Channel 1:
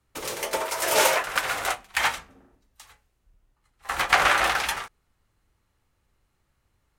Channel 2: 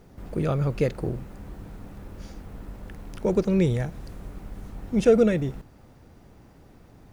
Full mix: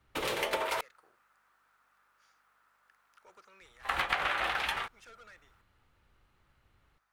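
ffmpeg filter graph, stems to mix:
ffmpeg -i stem1.wav -i stem2.wav -filter_complex "[0:a]highshelf=frequency=4500:width_type=q:width=1.5:gain=-8,volume=1.5dB,asplit=3[link_01][link_02][link_03];[link_01]atrim=end=0.81,asetpts=PTS-STARTPTS,afade=type=out:start_time=0.806:duration=0.004:curve=hsin[link_04];[link_02]atrim=start=0.81:end=3.61,asetpts=PTS-STARTPTS,volume=0[link_05];[link_03]atrim=start=3.61,asetpts=PTS-STARTPTS,afade=type=in:duration=0.004:curve=hsin[link_06];[link_04][link_05][link_06]concat=n=3:v=0:a=1[link_07];[1:a]highpass=frequency=1300:width_type=q:width=3.3,asoftclip=type=tanh:threshold=-30.5dB,aeval=exprs='val(0)+0.000251*(sin(2*PI*50*n/s)+sin(2*PI*2*50*n/s)/2+sin(2*PI*3*50*n/s)/3+sin(2*PI*4*50*n/s)/4+sin(2*PI*5*50*n/s)/5)':channel_layout=same,volume=-19.5dB[link_08];[link_07][link_08]amix=inputs=2:normalize=0,acompressor=threshold=-28dB:ratio=8" out.wav

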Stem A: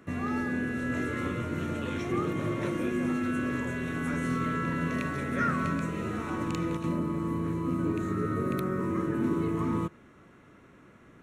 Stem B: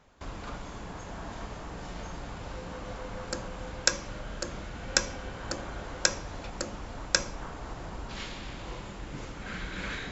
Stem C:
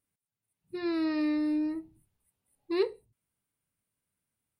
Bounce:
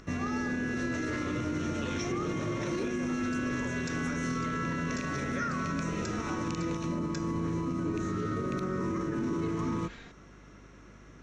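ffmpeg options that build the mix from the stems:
ffmpeg -i stem1.wav -i stem2.wav -i stem3.wav -filter_complex "[0:a]lowpass=frequency=5800:width_type=q:width=4.9,aeval=exprs='val(0)+0.00178*(sin(2*PI*50*n/s)+sin(2*PI*2*50*n/s)/2+sin(2*PI*3*50*n/s)/3+sin(2*PI*4*50*n/s)/4+sin(2*PI*5*50*n/s)/5)':channel_layout=same,volume=0.5dB[link_01];[1:a]aecho=1:1:4.3:0.8,volume=-15dB[link_02];[2:a]volume=-6.5dB[link_03];[link_01][link_02][link_03]amix=inputs=3:normalize=0,acompressor=mode=upward:threshold=-52dB:ratio=2.5,alimiter=limit=-24dB:level=0:latency=1:release=46" out.wav

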